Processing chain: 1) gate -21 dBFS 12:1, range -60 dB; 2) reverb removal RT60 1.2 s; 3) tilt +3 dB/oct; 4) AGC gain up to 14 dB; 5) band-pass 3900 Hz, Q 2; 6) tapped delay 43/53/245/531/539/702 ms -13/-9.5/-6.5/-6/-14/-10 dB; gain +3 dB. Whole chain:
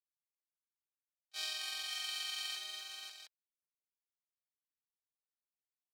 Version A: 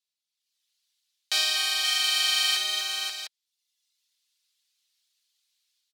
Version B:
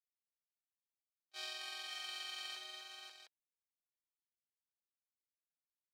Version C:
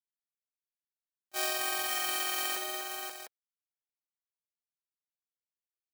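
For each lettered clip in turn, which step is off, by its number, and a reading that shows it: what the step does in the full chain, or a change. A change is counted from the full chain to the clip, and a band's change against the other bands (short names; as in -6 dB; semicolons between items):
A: 1, momentary loudness spread change -1 LU; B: 3, 8 kHz band -7.0 dB; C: 5, 500 Hz band +12.5 dB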